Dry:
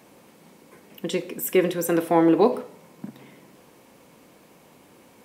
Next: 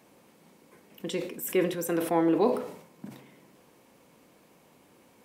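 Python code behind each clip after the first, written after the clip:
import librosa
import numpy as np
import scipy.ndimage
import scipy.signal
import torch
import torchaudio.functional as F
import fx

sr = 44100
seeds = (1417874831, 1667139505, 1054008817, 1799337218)

y = fx.sustainer(x, sr, db_per_s=86.0)
y = y * librosa.db_to_amplitude(-6.5)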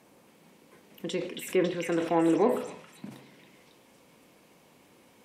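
y = fx.env_lowpass_down(x, sr, base_hz=2500.0, full_db=-22.5)
y = fx.echo_stepped(y, sr, ms=275, hz=2600.0, octaves=0.7, feedback_pct=70, wet_db=-0.5)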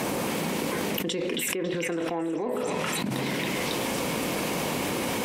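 y = fx.env_flatten(x, sr, amount_pct=100)
y = y * librosa.db_to_amplitude(-8.5)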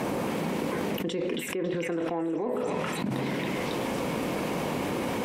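y = fx.high_shelf(x, sr, hz=2600.0, db=-10.5)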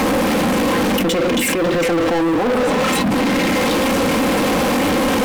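y = x + 0.69 * np.pad(x, (int(3.8 * sr / 1000.0), 0))[:len(x)]
y = fx.leveller(y, sr, passes=5)
y = y * librosa.db_to_amplitude(2.0)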